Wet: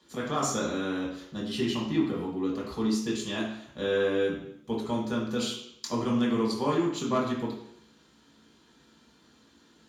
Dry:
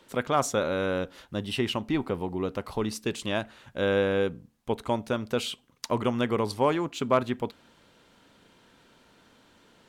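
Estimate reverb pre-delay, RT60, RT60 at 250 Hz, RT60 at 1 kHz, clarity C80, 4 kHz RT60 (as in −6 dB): 3 ms, 0.70 s, 0.75 s, 0.70 s, 6.5 dB, 0.65 s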